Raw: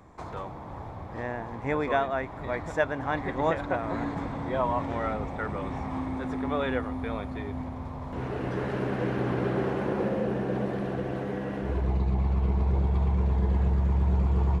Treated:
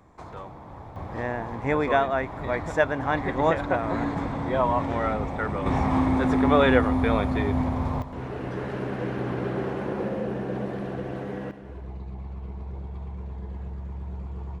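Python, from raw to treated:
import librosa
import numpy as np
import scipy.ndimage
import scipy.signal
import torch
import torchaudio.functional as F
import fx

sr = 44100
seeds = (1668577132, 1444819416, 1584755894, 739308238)

y = fx.gain(x, sr, db=fx.steps((0.0, -2.5), (0.96, 4.0), (5.66, 10.0), (8.02, -1.0), (11.51, -11.0)))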